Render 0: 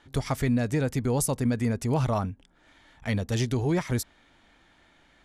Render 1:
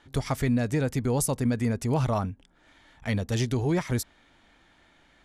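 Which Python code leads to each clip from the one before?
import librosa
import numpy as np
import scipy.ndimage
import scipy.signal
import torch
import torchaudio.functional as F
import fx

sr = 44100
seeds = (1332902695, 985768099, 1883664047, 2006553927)

y = x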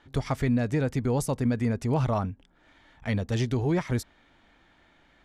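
y = fx.high_shelf(x, sr, hz=6600.0, db=-12.0)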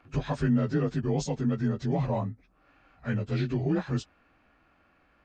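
y = fx.partial_stretch(x, sr, pct=88)
y = fx.rider(y, sr, range_db=3, speed_s=2.0)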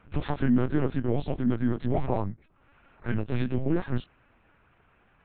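y = fx.lpc_vocoder(x, sr, seeds[0], excitation='pitch_kept', order=8)
y = y * 10.0 ** (2.0 / 20.0)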